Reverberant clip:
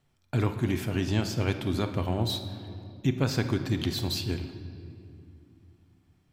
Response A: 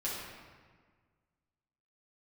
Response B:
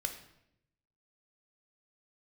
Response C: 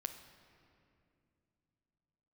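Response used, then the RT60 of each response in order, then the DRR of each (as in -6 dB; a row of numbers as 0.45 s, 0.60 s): C; 1.6 s, 0.80 s, 2.6 s; -8.0 dB, 4.5 dB, 7.0 dB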